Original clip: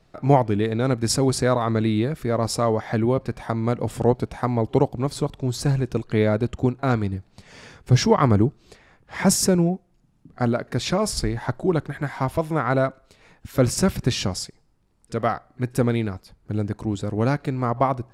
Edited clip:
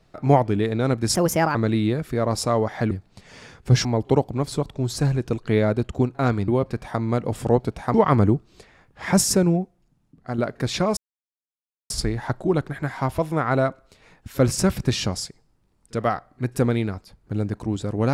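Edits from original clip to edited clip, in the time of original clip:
1.15–1.67 s: speed 130%
3.03–4.49 s: swap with 7.12–8.06 s
9.69–10.50 s: fade out, to -7.5 dB
11.09 s: insert silence 0.93 s

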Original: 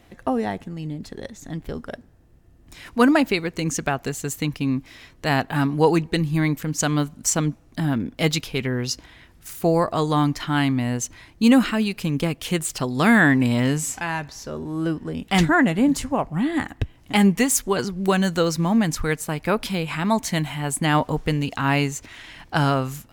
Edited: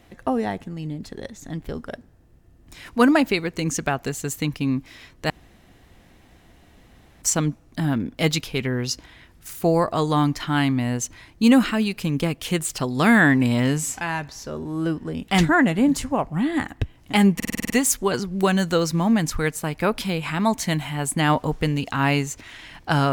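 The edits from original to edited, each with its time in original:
5.30–7.22 s: room tone
17.35 s: stutter 0.05 s, 8 plays

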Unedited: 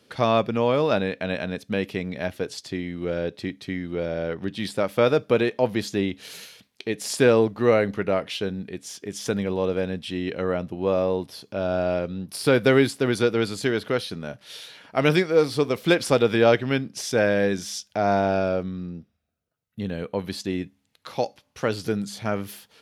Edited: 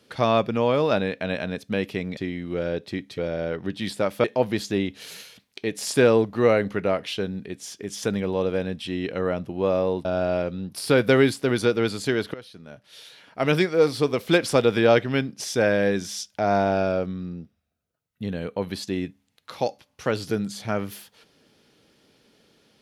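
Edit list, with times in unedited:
2.17–2.68 s: delete
3.69–3.96 s: delete
5.02–5.47 s: delete
11.28–11.62 s: delete
13.91–15.35 s: fade in, from -18.5 dB

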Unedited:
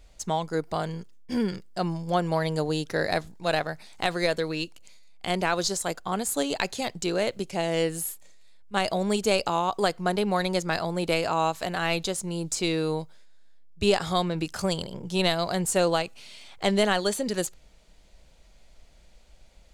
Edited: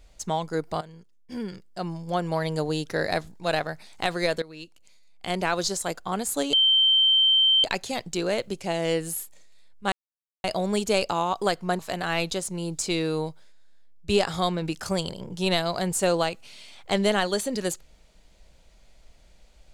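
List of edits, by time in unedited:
0.81–2.61 s: fade in linear, from -14.5 dB
4.42–5.48 s: fade in, from -16.5 dB
6.53 s: add tone 3.12 kHz -16 dBFS 1.11 s
8.81 s: insert silence 0.52 s
10.16–11.52 s: delete

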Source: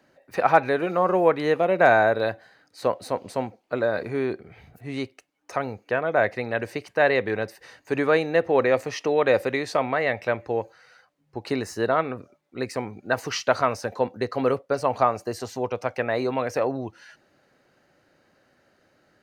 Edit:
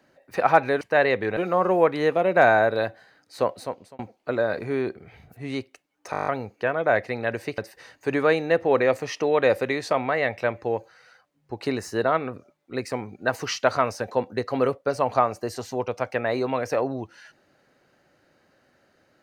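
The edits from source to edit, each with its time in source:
2.94–3.43 s: fade out
5.55 s: stutter 0.02 s, 9 plays
6.86–7.42 s: move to 0.81 s

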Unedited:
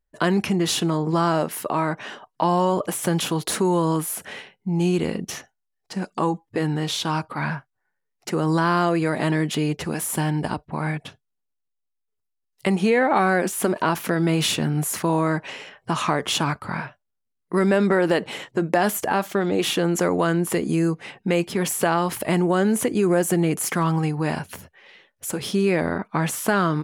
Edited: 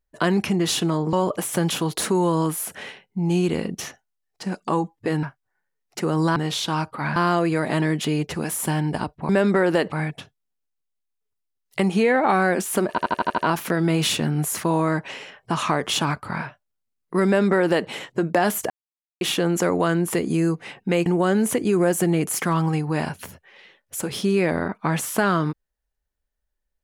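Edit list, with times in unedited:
1.13–2.63 s: delete
6.73–7.53 s: move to 8.66 s
13.77 s: stutter 0.08 s, 7 plays
17.65–18.28 s: copy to 10.79 s
19.09–19.60 s: mute
21.45–22.36 s: delete

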